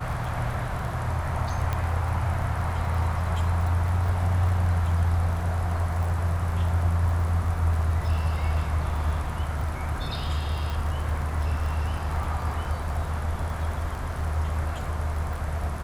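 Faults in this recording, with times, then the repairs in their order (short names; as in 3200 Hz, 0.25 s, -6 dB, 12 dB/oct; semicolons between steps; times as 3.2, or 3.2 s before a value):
crackle 24/s -32 dBFS
1.73 pop -15 dBFS
10.7 pop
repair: de-click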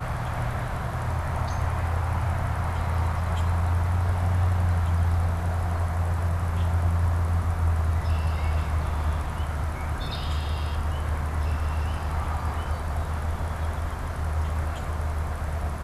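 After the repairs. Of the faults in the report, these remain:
none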